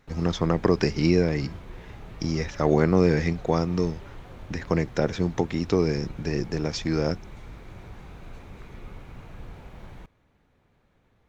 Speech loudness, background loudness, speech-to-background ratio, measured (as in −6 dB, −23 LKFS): −25.0 LKFS, −44.5 LKFS, 19.5 dB